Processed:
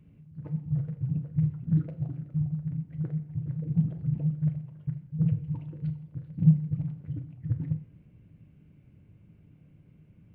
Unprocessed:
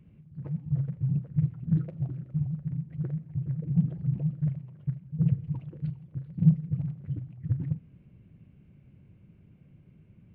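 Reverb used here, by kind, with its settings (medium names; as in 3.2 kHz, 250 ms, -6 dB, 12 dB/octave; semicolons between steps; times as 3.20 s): FDN reverb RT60 0.62 s, low-frequency decay 0.75×, high-frequency decay 0.8×, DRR 7.5 dB; trim -1 dB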